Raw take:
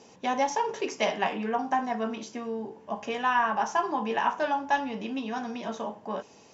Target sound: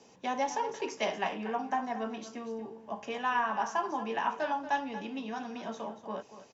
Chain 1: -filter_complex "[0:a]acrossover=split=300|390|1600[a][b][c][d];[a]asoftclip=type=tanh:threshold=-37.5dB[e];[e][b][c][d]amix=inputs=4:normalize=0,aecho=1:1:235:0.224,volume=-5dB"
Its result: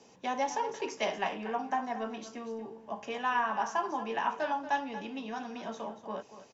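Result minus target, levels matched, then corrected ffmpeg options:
soft clip: distortion +10 dB
-filter_complex "[0:a]acrossover=split=300|390|1600[a][b][c][d];[a]asoftclip=type=tanh:threshold=-30.5dB[e];[e][b][c][d]amix=inputs=4:normalize=0,aecho=1:1:235:0.224,volume=-5dB"

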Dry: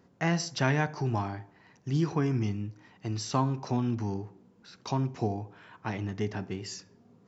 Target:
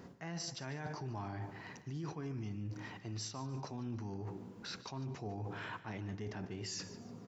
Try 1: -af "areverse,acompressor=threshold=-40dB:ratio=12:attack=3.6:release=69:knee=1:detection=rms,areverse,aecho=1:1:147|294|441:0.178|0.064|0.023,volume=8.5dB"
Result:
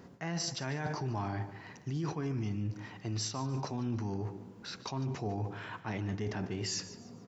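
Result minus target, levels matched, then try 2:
compressor: peak gain reduction -7 dB
-af "areverse,acompressor=threshold=-47.5dB:ratio=12:attack=3.6:release=69:knee=1:detection=rms,areverse,aecho=1:1:147|294|441:0.178|0.064|0.023,volume=8.5dB"

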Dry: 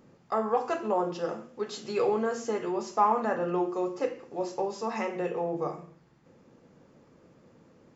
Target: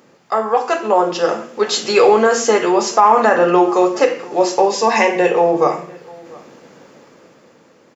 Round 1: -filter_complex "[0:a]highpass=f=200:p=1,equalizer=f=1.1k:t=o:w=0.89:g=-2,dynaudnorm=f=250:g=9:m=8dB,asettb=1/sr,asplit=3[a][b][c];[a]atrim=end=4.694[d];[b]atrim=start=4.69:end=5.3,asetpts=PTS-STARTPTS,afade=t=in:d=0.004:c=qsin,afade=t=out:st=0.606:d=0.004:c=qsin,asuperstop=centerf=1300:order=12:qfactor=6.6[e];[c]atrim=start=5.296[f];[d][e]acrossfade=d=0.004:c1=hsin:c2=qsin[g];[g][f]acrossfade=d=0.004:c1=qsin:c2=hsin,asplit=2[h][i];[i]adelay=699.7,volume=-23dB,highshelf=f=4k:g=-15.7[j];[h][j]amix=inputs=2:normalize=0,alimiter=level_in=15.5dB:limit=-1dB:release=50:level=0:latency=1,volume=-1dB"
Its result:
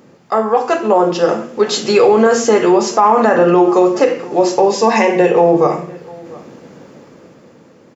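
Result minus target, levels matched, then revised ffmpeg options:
250 Hz band +3.0 dB
-filter_complex "[0:a]highpass=f=710:p=1,equalizer=f=1.1k:t=o:w=0.89:g=-2,dynaudnorm=f=250:g=9:m=8dB,asettb=1/sr,asplit=3[a][b][c];[a]atrim=end=4.694[d];[b]atrim=start=4.69:end=5.3,asetpts=PTS-STARTPTS,afade=t=in:d=0.004:c=qsin,afade=t=out:st=0.606:d=0.004:c=qsin,asuperstop=centerf=1300:order=12:qfactor=6.6[e];[c]atrim=start=5.296[f];[d][e]acrossfade=d=0.004:c1=hsin:c2=qsin[g];[g][f]acrossfade=d=0.004:c1=qsin:c2=hsin,asplit=2[h][i];[i]adelay=699.7,volume=-23dB,highshelf=f=4k:g=-15.7[j];[h][j]amix=inputs=2:normalize=0,alimiter=level_in=15.5dB:limit=-1dB:release=50:level=0:latency=1,volume=-1dB"

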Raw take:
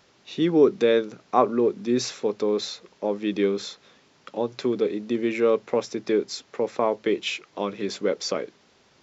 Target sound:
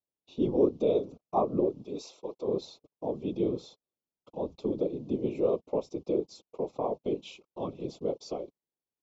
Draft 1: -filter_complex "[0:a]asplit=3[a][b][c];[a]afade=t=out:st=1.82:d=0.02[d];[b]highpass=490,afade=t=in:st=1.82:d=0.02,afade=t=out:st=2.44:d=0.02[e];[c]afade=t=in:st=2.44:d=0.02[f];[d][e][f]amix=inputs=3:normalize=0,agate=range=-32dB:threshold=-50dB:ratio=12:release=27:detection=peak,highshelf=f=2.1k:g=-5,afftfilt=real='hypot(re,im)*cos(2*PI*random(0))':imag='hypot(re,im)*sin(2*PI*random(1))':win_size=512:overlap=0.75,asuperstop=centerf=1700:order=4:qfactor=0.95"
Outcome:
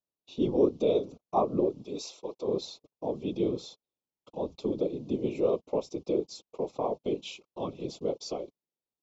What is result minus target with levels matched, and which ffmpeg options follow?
4000 Hz band +5.5 dB
-filter_complex "[0:a]asplit=3[a][b][c];[a]afade=t=out:st=1.82:d=0.02[d];[b]highpass=490,afade=t=in:st=1.82:d=0.02,afade=t=out:st=2.44:d=0.02[e];[c]afade=t=in:st=2.44:d=0.02[f];[d][e][f]amix=inputs=3:normalize=0,agate=range=-32dB:threshold=-50dB:ratio=12:release=27:detection=peak,highshelf=f=2.1k:g=-12.5,afftfilt=real='hypot(re,im)*cos(2*PI*random(0))':imag='hypot(re,im)*sin(2*PI*random(1))':win_size=512:overlap=0.75,asuperstop=centerf=1700:order=4:qfactor=0.95"

